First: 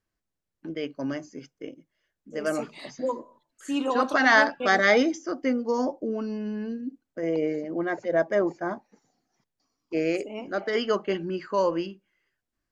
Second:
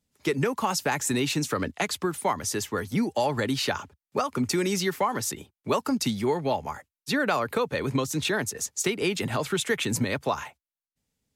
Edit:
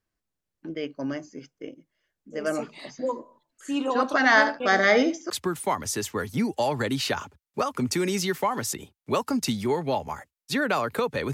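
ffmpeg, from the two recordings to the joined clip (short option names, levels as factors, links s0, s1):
-filter_complex "[0:a]asettb=1/sr,asplit=3[s0][s1][s2];[s0]atrim=end=4.294[s3];[s1]atrim=start=4.29:end=5.3,asetpts=PTS-STARTPTS,afade=t=in:d=0.004:c=qsin,afade=t=out:st=1.006:d=0.004:c=qsin,aecho=1:1:73:0.251,atrim=end_sample=44541[s4];[s2]atrim=start=5.296[s5];[s3][s4]acrossfade=d=0.004:c1=hsin:c2=qsin[s6];[s6][s5]acrossfade=d=0.004:c1=qsin:c2=hsin,apad=whole_dur=11.33,atrim=end=11.33,atrim=end=5.302[s7];[1:a]atrim=start=1.878:end=7.91[s8];[s7][s8]acrossfade=d=0.004:c1=hsin:c2=hsin"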